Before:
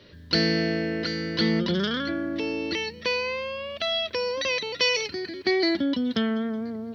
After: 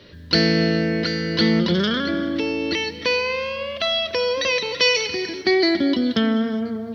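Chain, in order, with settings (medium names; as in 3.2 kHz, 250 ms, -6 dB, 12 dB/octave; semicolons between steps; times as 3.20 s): gated-style reverb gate 440 ms flat, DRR 11.5 dB; trim +5 dB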